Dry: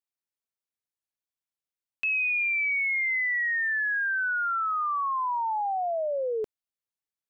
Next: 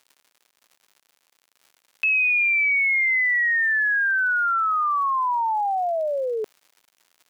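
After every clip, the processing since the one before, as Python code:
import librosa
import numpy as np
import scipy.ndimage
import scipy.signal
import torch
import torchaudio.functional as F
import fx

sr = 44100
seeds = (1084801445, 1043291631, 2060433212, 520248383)

y = fx.dmg_crackle(x, sr, seeds[0], per_s=150.0, level_db=-49.0)
y = fx.highpass(y, sr, hz=510.0, slope=6)
y = y * librosa.db_to_amplitude(6.5)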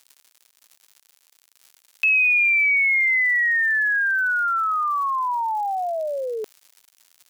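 y = fx.high_shelf(x, sr, hz=3200.0, db=11.5)
y = y * librosa.db_to_amplitude(-2.0)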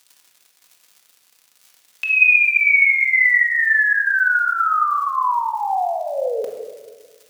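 y = fx.room_shoebox(x, sr, seeds[1], volume_m3=1300.0, walls='mixed', distance_m=1.9)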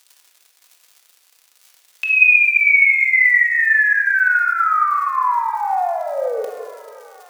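y = scipy.signal.sosfilt(scipy.signal.butter(2, 360.0, 'highpass', fs=sr, output='sos'), x)
y = fx.echo_tape(y, sr, ms=712, feedback_pct=57, wet_db=-21.5, lp_hz=4700.0, drive_db=8.0, wow_cents=22)
y = y * librosa.db_to_amplitude(1.5)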